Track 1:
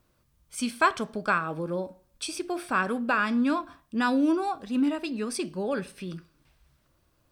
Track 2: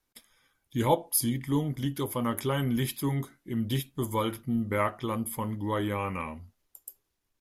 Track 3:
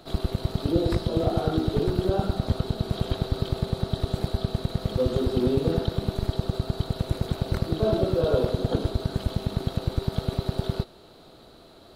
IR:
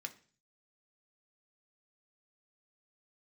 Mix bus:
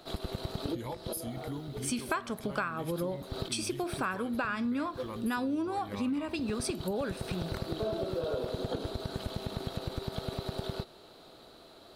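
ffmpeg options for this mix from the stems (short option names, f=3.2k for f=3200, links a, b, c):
-filter_complex "[0:a]adelay=1300,volume=2.5dB[a];[1:a]acompressor=threshold=-32dB:ratio=6,volume=-4.5dB,asplit=2[b][c];[2:a]lowshelf=f=250:g=-8,volume=-2dB,asplit=2[d][e];[e]volume=-18.5dB[f];[c]apad=whole_len=527306[g];[d][g]sidechaincompress=threshold=-56dB:ratio=8:attack=16:release=129[h];[3:a]atrim=start_sample=2205[i];[f][i]afir=irnorm=-1:irlink=0[j];[a][b][h][j]amix=inputs=4:normalize=0,acompressor=threshold=-30dB:ratio=6"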